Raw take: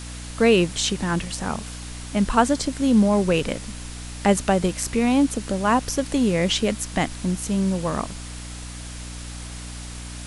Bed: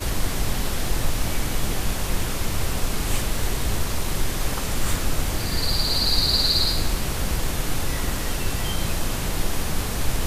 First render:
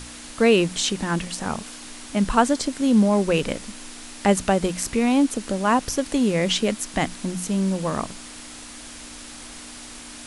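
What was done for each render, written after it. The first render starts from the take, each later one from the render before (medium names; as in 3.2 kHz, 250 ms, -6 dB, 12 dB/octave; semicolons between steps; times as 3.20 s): hum notches 60/120/180 Hz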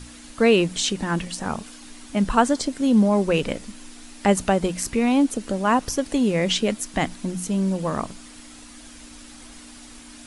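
noise reduction 7 dB, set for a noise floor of -40 dBFS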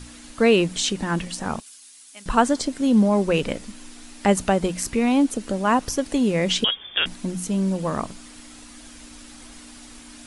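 1.60–2.26 s: differentiator; 6.64–7.06 s: frequency inversion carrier 3.5 kHz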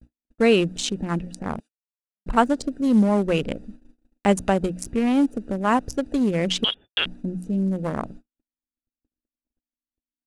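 local Wiener filter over 41 samples; gate -39 dBFS, range -56 dB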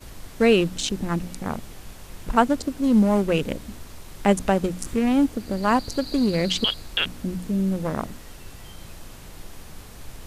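add bed -16.5 dB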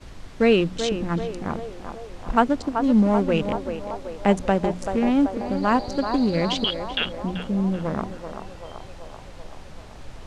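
distance through air 86 m; band-passed feedback delay 384 ms, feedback 72%, band-pass 750 Hz, level -6 dB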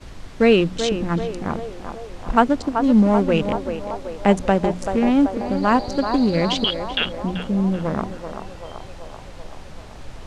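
trim +3 dB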